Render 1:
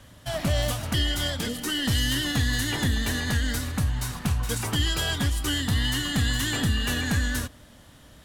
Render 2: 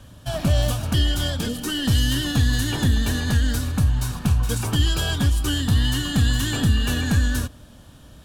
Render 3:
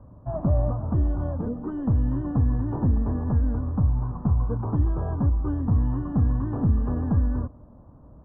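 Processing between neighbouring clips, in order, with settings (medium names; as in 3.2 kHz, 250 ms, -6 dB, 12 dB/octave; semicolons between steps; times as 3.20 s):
bass shelf 290 Hz +6 dB; band-stop 2 kHz, Q 5.5; trim +1 dB
Chebyshev low-pass 1.1 kHz, order 4; trim -1.5 dB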